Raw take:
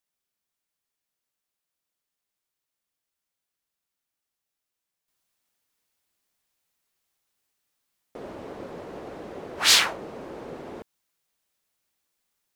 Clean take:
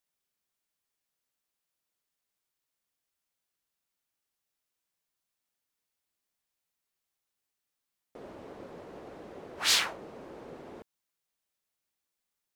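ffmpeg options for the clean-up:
ffmpeg -i in.wav -af "asetnsamples=nb_out_samples=441:pad=0,asendcmd='5.08 volume volume -7.5dB',volume=0dB" out.wav

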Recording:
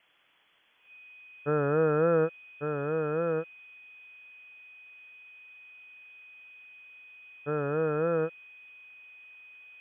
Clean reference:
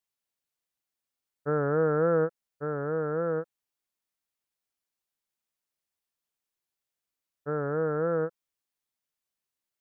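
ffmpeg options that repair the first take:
ffmpeg -i in.wav -af "bandreject=frequency=2500:width=30,afftdn=noise_reduction=30:noise_floor=-52" out.wav

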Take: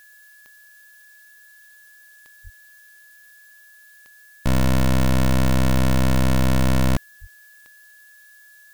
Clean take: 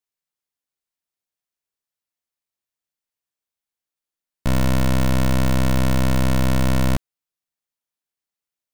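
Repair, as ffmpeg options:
ffmpeg -i in.wav -filter_complex "[0:a]adeclick=threshold=4,bandreject=frequency=1700:width=30,asplit=3[link_01][link_02][link_03];[link_01]afade=type=out:start_time=2.43:duration=0.02[link_04];[link_02]highpass=frequency=140:width=0.5412,highpass=frequency=140:width=1.3066,afade=type=in:start_time=2.43:duration=0.02,afade=type=out:start_time=2.55:duration=0.02[link_05];[link_03]afade=type=in:start_time=2.55:duration=0.02[link_06];[link_04][link_05][link_06]amix=inputs=3:normalize=0,asplit=3[link_07][link_08][link_09];[link_07]afade=type=out:start_time=6.14:duration=0.02[link_10];[link_08]highpass=frequency=140:width=0.5412,highpass=frequency=140:width=1.3066,afade=type=in:start_time=6.14:duration=0.02,afade=type=out:start_time=6.26:duration=0.02[link_11];[link_09]afade=type=in:start_time=6.26:duration=0.02[link_12];[link_10][link_11][link_12]amix=inputs=3:normalize=0,asplit=3[link_13][link_14][link_15];[link_13]afade=type=out:start_time=7.2:duration=0.02[link_16];[link_14]highpass=frequency=140:width=0.5412,highpass=frequency=140:width=1.3066,afade=type=in:start_time=7.2:duration=0.02,afade=type=out:start_time=7.32:duration=0.02[link_17];[link_15]afade=type=in:start_time=7.32:duration=0.02[link_18];[link_16][link_17][link_18]amix=inputs=3:normalize=0,agate=range=-21dB:threshold=-42dB" out.wav

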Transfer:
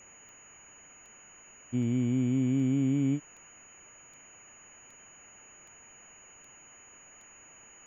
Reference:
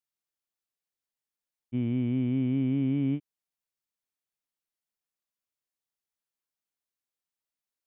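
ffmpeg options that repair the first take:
ffmpeg -i in.wav -af "adeclick=threshold=4,bandreject=frequency=6800:width=30,afwtdn=0.0028" out.wav

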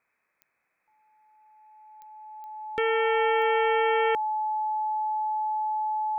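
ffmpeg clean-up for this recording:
ffmpeg -i in.wav -af "adeclick=threshold=4,bandreject=frequency=860:width=30,agate=range=-21dB:threshold=-69dB" out.wav

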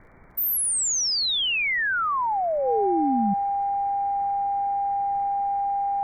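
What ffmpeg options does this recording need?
ffmpeg -i in.wav -af "adeclick=threshold=4,bandreject=frequency=800:width=30,agate=range=-21dB:threshold=-17dB" out.wav

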